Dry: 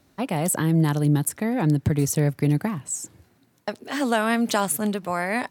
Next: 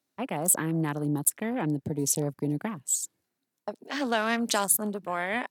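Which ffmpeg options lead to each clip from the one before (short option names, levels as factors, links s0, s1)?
-af "highpass=200,highshelf=f=3200:g=8.5,afwtdn=0.0224,volume=0.562"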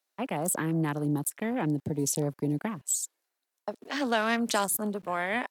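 -filter_complex "[0:a]acrossover=split=430|1700[s0][s1][s2];[s0]aeval=exprs='val(0)*gte(abs(val(0)),0.00178)':c=same[s3];[s2]alimiter=limit=0.119:level=0:latency=1:release=34[s4];[s3][s1][s4]amix=inputs=3:normalize=0"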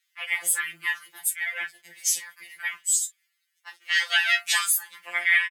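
-filter_complex "[0:a]highpass=f=2200:t=q:w=3.8,asplit=2[s0][s1];[s1]aecho=0:1:11|37:0.473|0.168[s2];[s0][s2]amix=inputs=2:normalize=0,afftfilt=real='re*2.83*eq(mod(b,8),0)':imag='im*2.83*eq(mod(b,8),0)':win_size=2048:overlap=0.75,volume=2.51"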